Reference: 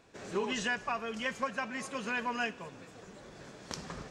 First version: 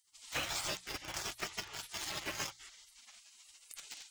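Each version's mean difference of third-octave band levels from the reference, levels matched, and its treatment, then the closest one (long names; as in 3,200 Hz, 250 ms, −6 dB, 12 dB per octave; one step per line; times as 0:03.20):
15.0 dB: gate on every frequency bin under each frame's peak −25 dB weak
mains-hum notches 60/120/180 Hz
in parallel at −3 dB: bit reduction 8 bits
on the sum: level +8 dB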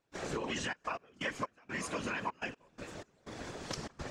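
8.0 dB: downward compressor, threshold −40 dBFS, peak gain reduction 12 dB
gate pattern ".xxxxx.x..xx." 124 BPM −24 dB
random phases in short frames
level +6 dB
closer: second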